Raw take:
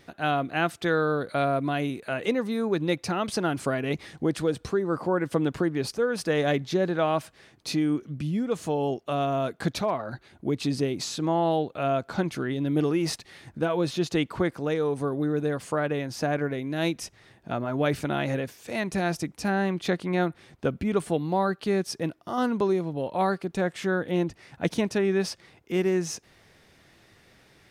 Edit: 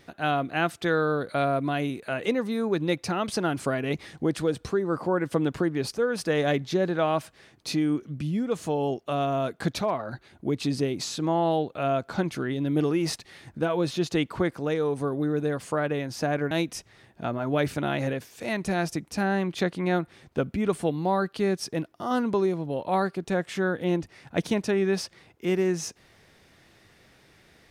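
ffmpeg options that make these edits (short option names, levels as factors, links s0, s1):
-filter_complex "[0:a]asplit=2[s0][s1];[s0]atrim=end=16.512[s2];[s1]atrim=start=16.778[s3];[s2][s3]acrossfade=d=0.004:c1=hsin:c2=hsin"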